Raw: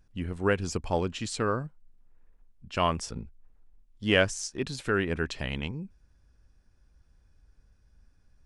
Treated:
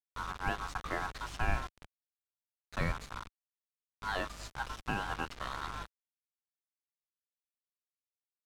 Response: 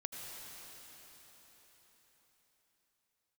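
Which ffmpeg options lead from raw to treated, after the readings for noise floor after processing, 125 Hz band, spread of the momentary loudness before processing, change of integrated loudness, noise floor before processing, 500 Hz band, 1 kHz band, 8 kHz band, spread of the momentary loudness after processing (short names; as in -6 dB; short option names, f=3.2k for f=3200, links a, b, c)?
under -85 dBFS, -9.0 dB, 13 LU, -8.5 dB, -64 dBFS, -15.0 dB, -3.5 dB, -13.0 dB, 10 LU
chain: -filter_complex "[0:a]aeval=exprs='val(0)*sin(2*PI*1200*n/s)':c=same,alimiter=limit=-18dB:level=0:latency=1:release=207,aecho=1:1:426|852:0.0708|0.0255,asplit=2[a][b];[1:a]atrim=start_sample=2205,adelay=38[c];[b][c]afir=irnorm=-1:irlink=0,volume=-11dB[d];[a][d]amix=inputs=2:normalize=0,aeval=exprs='val(0)+0.00224*(sin(2*PI*50*n/s)+sin(2*PI*2*50*n/s)/2+sin(2*PI*3*50*n/s)/3+sin(2*PI*4*50*n/s)/4+sin(2*PI*5*50*n/s)/5)':c=same,acrusher=bits=5:mix=0:aa=0.000001,aemphasis=mode=reproduction:type=bsi,volume=-4.5dB"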